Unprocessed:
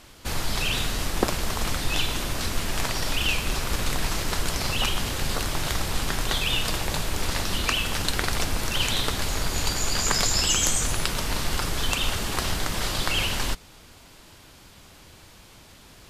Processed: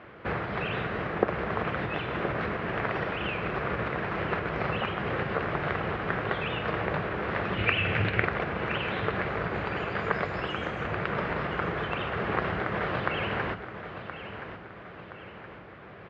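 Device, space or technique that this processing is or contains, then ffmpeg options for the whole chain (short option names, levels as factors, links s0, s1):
bass amplifier: -filter_complex "[0:a]acompressor=threshold=0.0501:ratio=4,highpass=f=84:w=0.5412,highpass=f=84:w=1.3066,equalizer=f=85:t=q:w=4:g=-10,equalizer=f=130:t=q:w=4:g=-4,equalizer=f=260:t=q:w=4:g=-9,equalizer=f=450:t=q:w=4:g=3,equalizer=f=910:t=q:w=4:g=-5,lowpass=f=2000:w=0.5412,lowpass=f=2000:w=1.3066,asettb=1/sr,asplit=3[s0][s1][s2];[s0]atrim=end=7.574[s3];[s1]atrim=start=7.57:end=8.25,asetpts=PTS-STARTPTS,afade=t=in:d=0.004:c=qsin,afade=t=out:st=0.676:d=0.004:c=qsin,equalizer=f=100:t=o:w=0.67:g=12,equalizer=f=1000:t=o:w=0.67:g=-5,equalizer=f=2500:t=o:w=0.67:g=10[s4];[s2]atrim=start=8.246[s5];[s3][s4]acrossfade=d=0.004:c1=hsin:c2=qsin[s6];[s6][s5]acrossfade=d=0.004:c1=qsin:c2=hsin,aecho=1:1:1022|2044|3066|4088|5110:0.282|0.127|0.0571|0.0257|0.0116,volume=2.24"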